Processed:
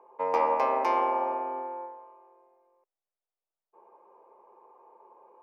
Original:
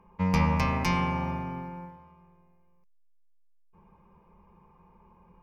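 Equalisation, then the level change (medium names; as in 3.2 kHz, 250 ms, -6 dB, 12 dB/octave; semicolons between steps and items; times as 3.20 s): inverse Chebyshev high-pass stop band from 180 Hz, stop band 40 dB; tilt shelf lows +8.5 dB, about 1.4 kHz; peaking EQ 700 Hz +10 dB 1.8 oct; -5.5 dB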